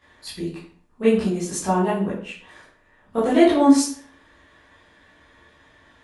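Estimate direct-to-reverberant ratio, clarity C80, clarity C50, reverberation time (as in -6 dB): -11.5 dB, 8.5 dB, 4.0 dB, 0.55 s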